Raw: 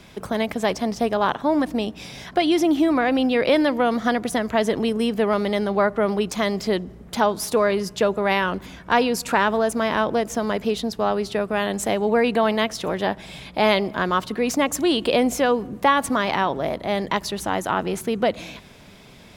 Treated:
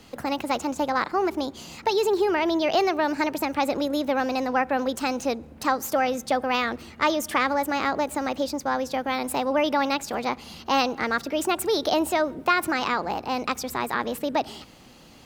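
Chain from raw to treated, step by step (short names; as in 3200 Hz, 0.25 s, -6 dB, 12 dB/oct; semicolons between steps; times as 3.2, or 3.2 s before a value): varispeed +27%; gain -3.5 dB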